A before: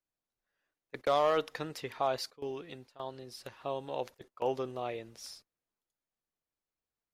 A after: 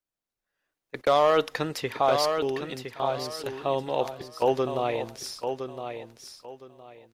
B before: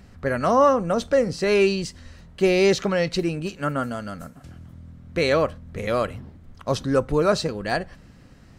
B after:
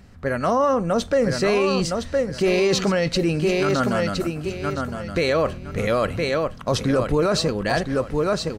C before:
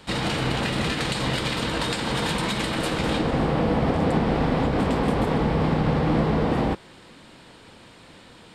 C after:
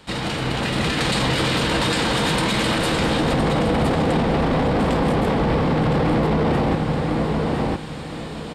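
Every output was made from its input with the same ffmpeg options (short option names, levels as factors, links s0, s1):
-af "aecho=1:1:1013|2026|3039:0.398|0.0955|0.0229,dynaudnorm=f=140:g=13:m=2.99,alimiter=limit=0.251:level=0:latency=1:release=11"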